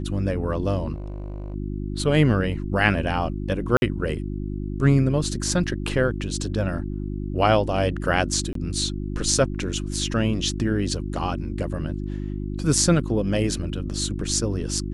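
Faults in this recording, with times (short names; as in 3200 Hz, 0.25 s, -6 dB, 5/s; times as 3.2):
hum 50 Hz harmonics 7 -29 dBFS
0.94–1.54 clipped -28.5 dBFS
3.77–3.82 gap 51 ms
8.53–8.55 gap 23 ms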